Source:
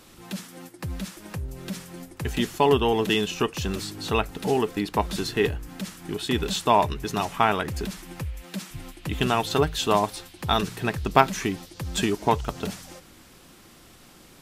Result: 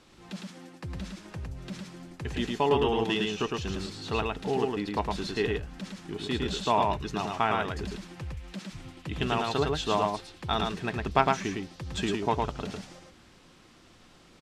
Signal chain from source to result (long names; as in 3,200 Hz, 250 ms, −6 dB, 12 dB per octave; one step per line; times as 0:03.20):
low-pass filter 6,000 Hz 12 dB per octave
on a send: single-tap delay 108 ms −3 dB
on the sum: level −6 dB